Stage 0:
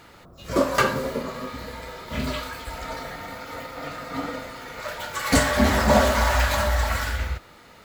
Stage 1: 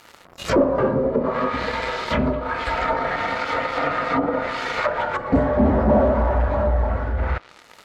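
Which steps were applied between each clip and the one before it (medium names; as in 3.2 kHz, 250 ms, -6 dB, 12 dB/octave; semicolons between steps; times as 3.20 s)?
waveshaping leveller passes 3; bass shelf 320 Hz -10 dB; low-pass that closes with the level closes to 480 Hz, closed at -16.5 dBFS; trim +3.5 dB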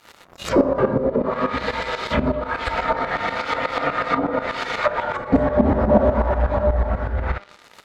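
peaking EQ 3.7 kHz +2.5 dB 0.2 oct; feedback comb 200 Hz, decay 0.49 s, harmonics all, mix 50%; tremolo saw up 8.2 Hz, depth 75%; trim +9 dB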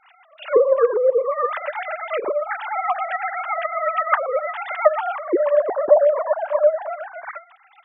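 formants replaced by sine waves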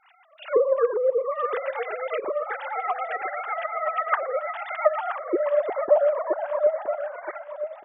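feedback delay 972 ms, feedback 30%, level -10.5 dB; trim -5 dB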